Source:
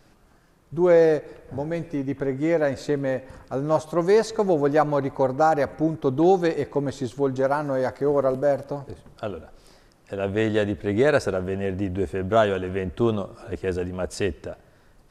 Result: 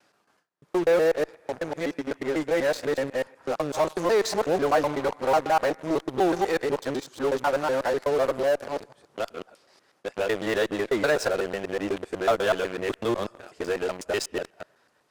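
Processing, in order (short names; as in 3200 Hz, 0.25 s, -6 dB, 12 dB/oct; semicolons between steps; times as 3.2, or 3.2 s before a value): local time reversal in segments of 0.124 s; gate with hold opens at -47 dBFS; weighting filter A; in parallel at -10 dB: fuzz box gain 34 dB, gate -38 dBFS; on the sum: gain -4 dB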